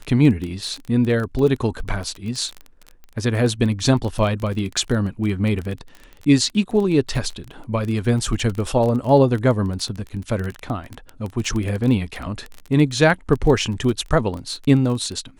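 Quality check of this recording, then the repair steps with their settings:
crackle 21/s -24 dBFS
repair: de-click

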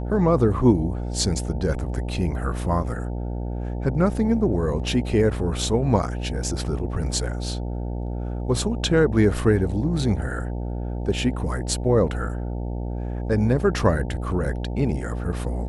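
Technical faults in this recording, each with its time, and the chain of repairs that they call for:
buzz 60 Hz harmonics 15 -28 dBFS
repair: de-hum 60 Hz, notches 15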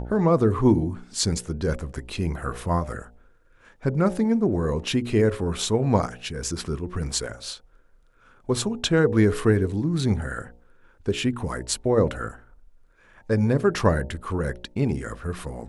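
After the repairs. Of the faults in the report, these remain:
none

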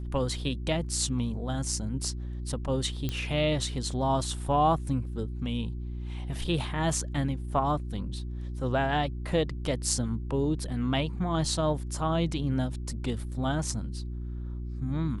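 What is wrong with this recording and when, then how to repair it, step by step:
hum 60 Hz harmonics 6 -35 dBFS
3.09 pop -17 dBFS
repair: de-click; de-hum 60 Hz, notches 6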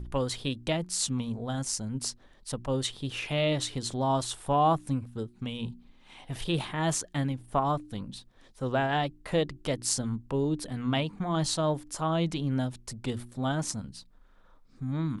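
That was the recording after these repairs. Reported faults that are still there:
none

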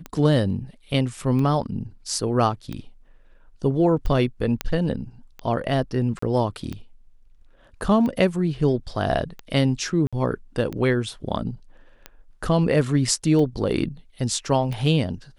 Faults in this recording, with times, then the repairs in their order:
tick 45 rpm -18 dBFS
4.61 pop -8 dBFS
6.19–6.22 gap 34 ms
10.07–10.13 gap 56 ms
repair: de-click; interpolate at 6.19, 34 ms; interpolate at 10.07, 56 ms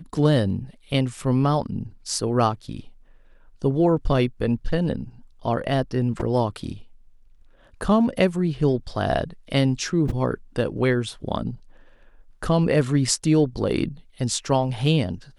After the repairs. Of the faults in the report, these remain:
4.61 pop

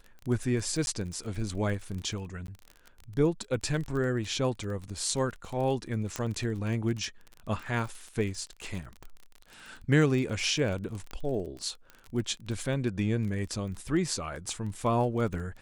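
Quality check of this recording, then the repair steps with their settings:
crackle 28/s -35 dBFS
0.86–0.87 gap 11 ms
2.47–2.48 gap 12 ms
6.16 pop -16 dBFS
11.11 pop -24 dBFS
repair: de-click; interpolate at 0.86, 11 ms; interpolate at 2.47, 12 ms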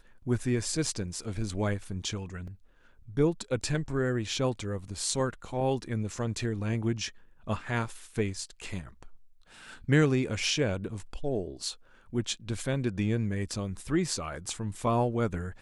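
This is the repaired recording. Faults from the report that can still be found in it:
6.16 pop

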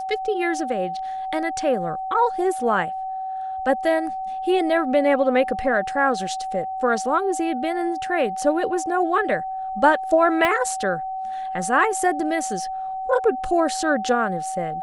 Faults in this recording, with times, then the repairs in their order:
tone 760 Hz -26 dBFS
10.45 pop -8 dBFS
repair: de-click; notch 760 Hz, Q 30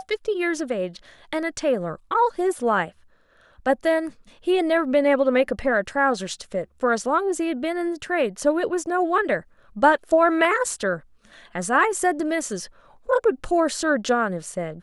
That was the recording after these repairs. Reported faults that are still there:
10.45 pop

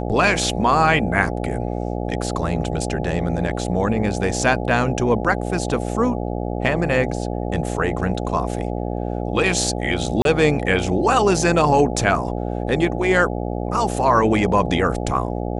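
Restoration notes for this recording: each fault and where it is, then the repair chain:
buzz 60 Hz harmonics 14 -25 dBFS
10.22–10.25 gap 32 ms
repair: de-hum 60 Hz, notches 14; interpolate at 10.22, 32 ms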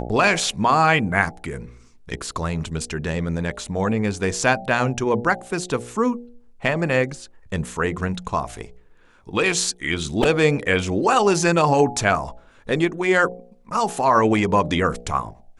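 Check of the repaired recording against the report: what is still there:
none

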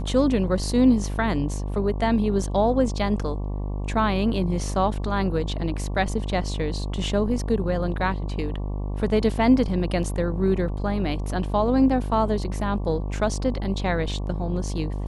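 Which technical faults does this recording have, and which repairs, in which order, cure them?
buzz 50 Hz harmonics 23 -28 dBFS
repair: de-hum 50 Hz, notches 23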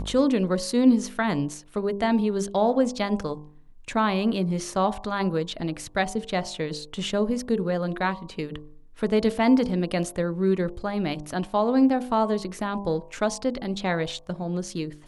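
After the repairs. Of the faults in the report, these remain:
none

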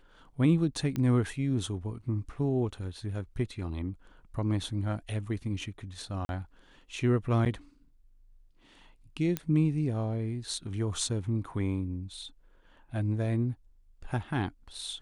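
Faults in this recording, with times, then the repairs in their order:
0.96 pop -20 dBFS
6.25–6.29 gap 41 ms
7.45–7.46 gap 8.7 ms
9.37 pop -15 dBFS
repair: de-click; interpolate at 6.25, 41 ms; interpolate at 7.45, 8.7 ms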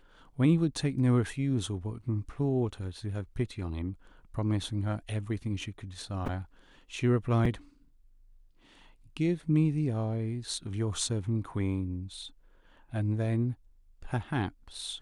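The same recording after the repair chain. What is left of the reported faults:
0.96 pop

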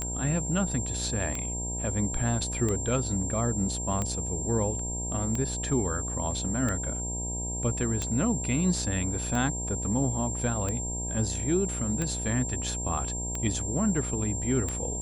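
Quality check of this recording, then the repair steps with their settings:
buzz 60 Hz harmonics 16 -35 dBFS
tick 45 rpm -17 dBFS
tone 7400 Hz -33 dBFS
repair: de-click; de-hum 60 Hz, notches 16; notch 7400 Hz, Q 30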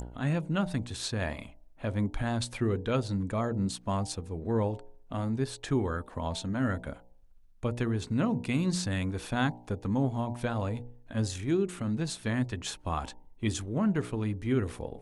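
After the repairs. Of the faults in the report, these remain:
none

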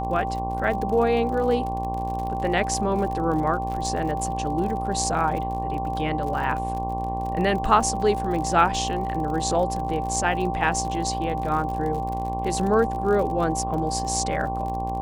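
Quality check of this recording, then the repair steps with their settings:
buzz 60 Hz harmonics 19 -31 dBFS
crackle 51/s -31 dBFS
tone 780 Hz -28 dBFS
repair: de-click; de-hum 60 Hz, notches 19; notch 780 Hz, Q 30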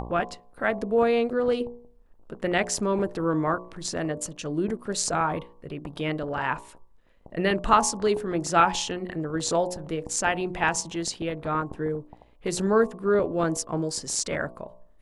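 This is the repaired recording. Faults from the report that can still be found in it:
none

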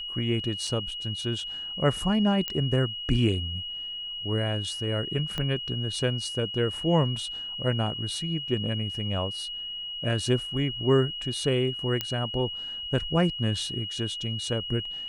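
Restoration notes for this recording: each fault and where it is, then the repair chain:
tone 2900 Hz -33 dBFS
0.67 gap 3.3 ms
2.48 pop -14 dBFS
5.38 pop -17 dBFS
12.01 pop -12 dBFS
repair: de-click; notch 2900 Hz, Q 30; interpolate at 0.67, 3.3 ms

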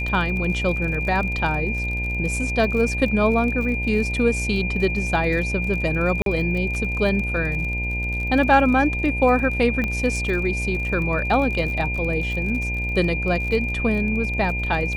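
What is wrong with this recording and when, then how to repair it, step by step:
buzz 60 Hz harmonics 16 -27 dBFS
crackle 40/s -29 dBFS
tone 2400 Hz -26 dBFS
6.22–6.26 gap 42 ms
9.84 pop -13 dBFS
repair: de-click; de-hum 60 Hz, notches 16; notch 2400 Hz, Q 30; interpolate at 6.22, 42 ms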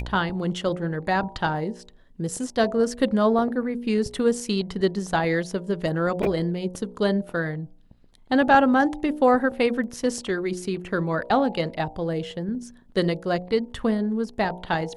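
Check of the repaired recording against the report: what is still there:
9.84 pop

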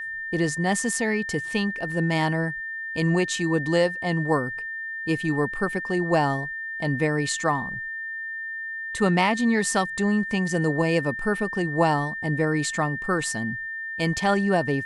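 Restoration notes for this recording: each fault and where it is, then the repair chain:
tone 1800 Hz -30 dBFS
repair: notch 1800 Hz, Q 30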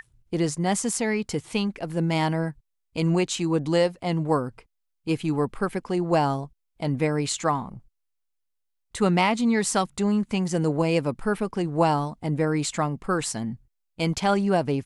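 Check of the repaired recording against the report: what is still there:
none

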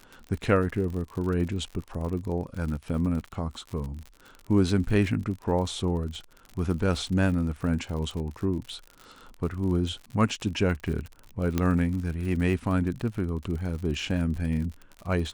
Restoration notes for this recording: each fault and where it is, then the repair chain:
crackle 60/s -34 dBFS
11.58 pop -12 dBFS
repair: de-click

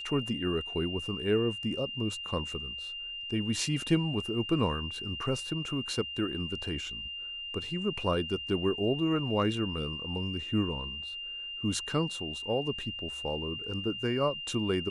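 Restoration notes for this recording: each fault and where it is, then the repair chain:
tone 2800 Hz -37 dBFS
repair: notch 2800 Hz, Q 30

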